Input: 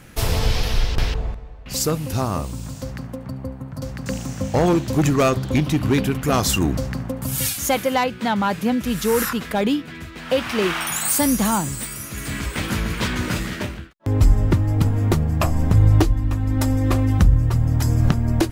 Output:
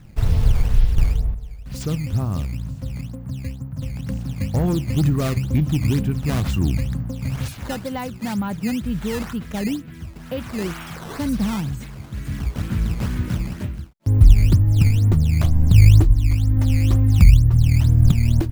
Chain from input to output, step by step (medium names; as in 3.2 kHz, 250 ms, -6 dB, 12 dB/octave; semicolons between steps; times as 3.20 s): tone controls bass +15 dB, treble -4 dB; decimation with a swept rate 11×, swing 160% 2.1 Hz; trim -10.5 dB